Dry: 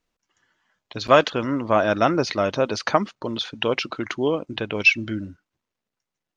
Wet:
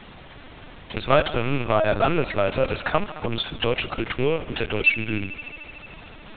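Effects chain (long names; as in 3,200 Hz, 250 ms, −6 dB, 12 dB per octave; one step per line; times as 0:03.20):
loose part that buzzes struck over −31 dBFS, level −19 dBFS
on a send: feedback echo with a high-pass in the loop 74 ms, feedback 83%, high-pass 250 Hz, level −18 dB
on the sum: background noise pink −47 dBFS
in parallel at +2 dB: downward compressor 6 to 1, threshold −32 dBFS, peak gain reduction 20.5 dB
on the sum: hard clipping −9.5 dBFS, distortion −14 dB
linear-prediction vocoder at 8 kHz pitch kept
level −2 dB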